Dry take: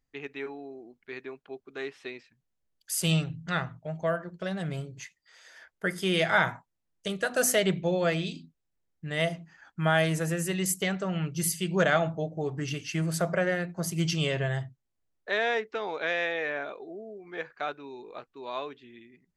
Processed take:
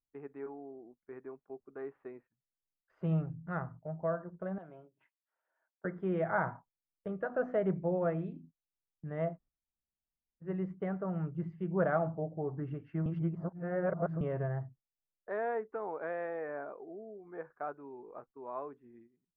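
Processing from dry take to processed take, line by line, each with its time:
4.58–5.85 speaker cabinet 470–3900 Hz, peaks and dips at 470 Hz -9 dB, 790 Hz -3 dB, 1200 Hz -6 dB, 1900 Hz -10 dB, 3100 Hz +4 dB
9.34–10.45 room tone, crossfade 0.10 s
13.06–14.21 reverse
whole clip: gate -51 dBFS, range -12 dB; LPF 1300 Hz 24 dB/oct; gain -5 dB

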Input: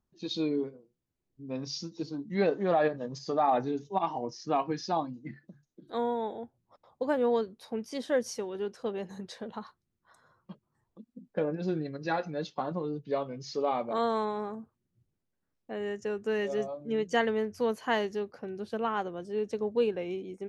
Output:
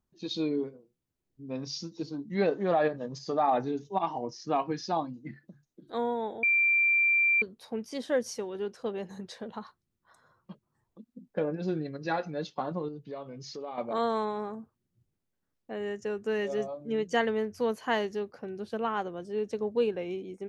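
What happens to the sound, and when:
6.43–7.42 bleep 2360 Hz -21 dBFS
12.88–13.78 compressor 2.5:1, threshold -40 dBFS

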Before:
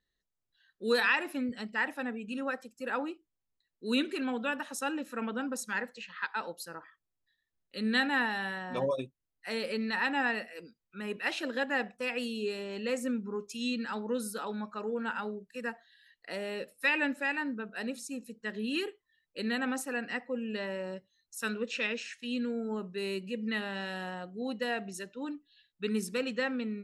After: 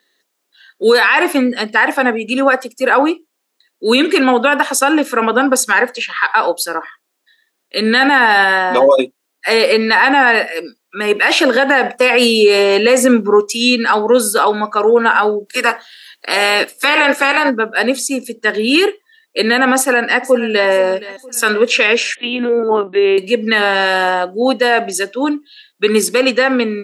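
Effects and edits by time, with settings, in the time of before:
11.16–13.41 gain +4 dB
15.46–17.49 spectral limiter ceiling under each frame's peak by 17 dB
19.75–20.69 echo throw 0.47 s, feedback 45%, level -17 dB
22.15–23.18 LPC vocoder at 8 kHz pitch kept
whole clip: HPF 280 Hz 24 dB/oct; dynamic EQ 940 Hz, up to +4 dB, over -43 dBFS, Q 0.94; maximiser +24.5 dB; gain -1 dB

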